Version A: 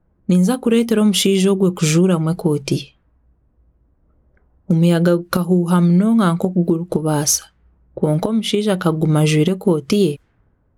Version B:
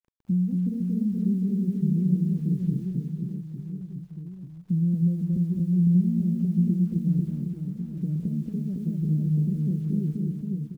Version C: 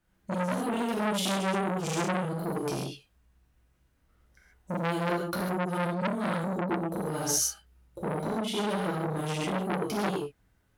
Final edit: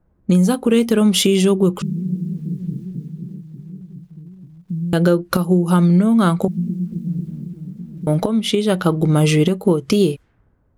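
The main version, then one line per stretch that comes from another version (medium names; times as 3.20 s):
A
1.82–4.93 s: from B
6.48–8.07 s: from B
not used: C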